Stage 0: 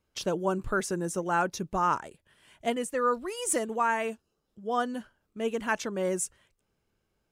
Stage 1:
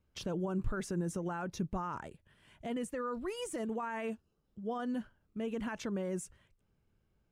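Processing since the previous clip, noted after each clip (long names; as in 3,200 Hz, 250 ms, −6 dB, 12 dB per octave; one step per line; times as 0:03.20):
brickwall limiter −26.5 dBFS, peak gain reduction 11.5 dB
bass and treble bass +9 dB, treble −6 dB
level −4 dB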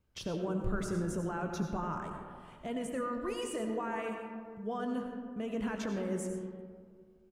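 double-tracking delay 19 ms −13 dB
on a send at −3.5 dB: convolution reverb RT60 2.0 s, pre-delay 50 ms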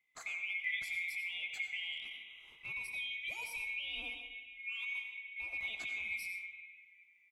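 neighbouring bands swapped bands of 2,000 Hz
level −5.5 dB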